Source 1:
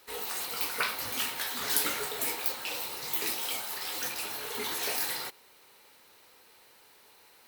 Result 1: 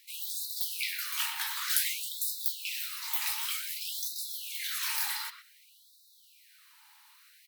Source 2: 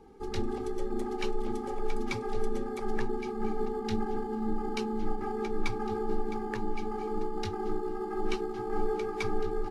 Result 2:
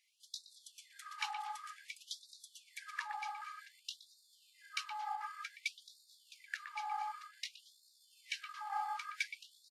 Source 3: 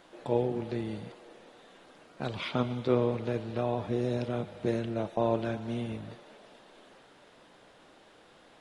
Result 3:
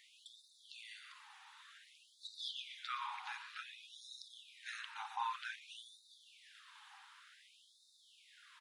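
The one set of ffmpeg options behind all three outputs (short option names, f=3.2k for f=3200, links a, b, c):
-filter_complex "[0:a]asplit=2[a][b];[b]adelay=120,highpass=300,lowpass=3.4k,asoftclip=type=hard:threshold=-18dB,volume=-9dB[c];[a][c]amix=inputs=2:normalize=0,afftfilt=real='re*gte(b*sr/1024,750*pow(3600/750,0.5+0.5*sin(2*PI*0.54*pts/sr)))':imag='im*gte(b*sr/1024,750*pow(3600/750,0.5+0.5*sin(2*PI*0.54*pts/sr)))':win_size=1024:overlap=0.75"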